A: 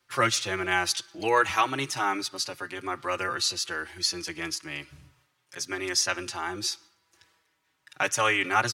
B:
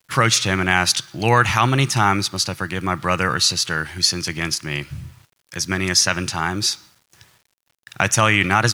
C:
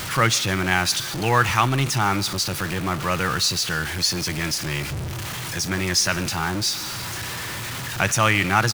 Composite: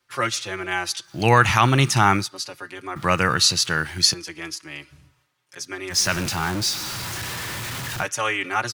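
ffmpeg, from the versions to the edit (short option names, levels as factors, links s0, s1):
-filter_complex "[1:a]asplit=2[s0][s1];[0:a]asplit=4[s2][s3][s4][s5];[s2]atrim=end=1.19[s6];[s0]atrim=start=1.03:end=2.32[s7];[s3]atrim=start=2.16:end=2.962[s8];[s1]atrim=start=2.958:end=4.142[s9];[s4]atrim=start=4.138:end=5.99[s10];[2:a]atrim=start=5.89:end=8.07[s11];[s5]atrim=start=7.97[s12];[s6][s7]acrossfade=d=0.16:c1=tri:c2=tri[s13];[s13][s8]acrossfade=d=0.16:c1=tri:c2=tri[s14];[s14][s9]acrossfade=d=0.004:c1=hsin:c2=hsin[s15];[s15][s10]acrossfade=d=0.004:c1=hsin:c2=hsin[s16];[s16][s11]acrossfade=d=0.1:c1=tri:c2=tri[s17];[s17][s12]acrossfade=d=0.1:c1=tri:c2=tri"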